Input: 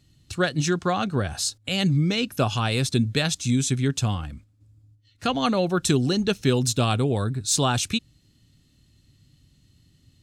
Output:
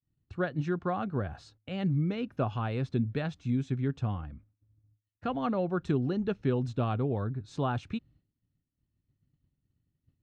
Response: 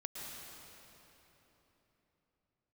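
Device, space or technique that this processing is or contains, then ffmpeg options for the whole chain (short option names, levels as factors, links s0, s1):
hearing-loss simulation: -af "lowpass=1500,agate=range=0.0224:threshold=0.00355:ratio=3:detection=peak,volume=0.447"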